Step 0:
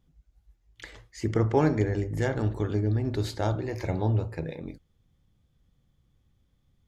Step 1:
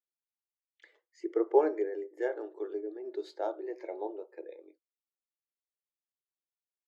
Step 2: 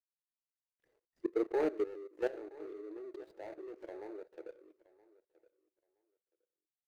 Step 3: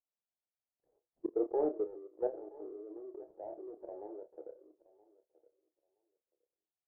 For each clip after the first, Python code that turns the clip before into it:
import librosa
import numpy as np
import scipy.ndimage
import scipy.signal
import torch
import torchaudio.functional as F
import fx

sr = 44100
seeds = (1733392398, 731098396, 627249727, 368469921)

y1 = scipy.signal.sosfilt(scipy.signal.cheby1(5, 1.0, 340.0, 'highpass', fs=sr, output='sos'), x)
y1 = fx.high_shelf(y1, sr, hz=5900.0, db=-5.0)
y1 = fx.spectral_expand(y1, sr, expansion=1.5)
y1 = y1 * 10.0 ** (1.5 / 20.0)
y2 = scipy.ndimage.median_filter(y1, 41, mode='constant')
y2 = fx.level_steps(y2, sr, step_db=16)
y2 = fx.echo_feedback(y2, sr, ms=971, feedback_pct=16, wet_db=-21)
y2 = y2 * 10.0 ** (2.5 / 20.0)
y3 = fx.vibrato(y2, sr, rate_hz=2.9, depth_cents=39.0)
y3 = fx.ladder_lowpass(y3, sr, hz=880.0, resonance_pct=45)
y3 = fx.doubler(y3, sr, ms=29.0, db=-9.5)
y3 = y3 * 10.0 ** (5.5 / 20.0)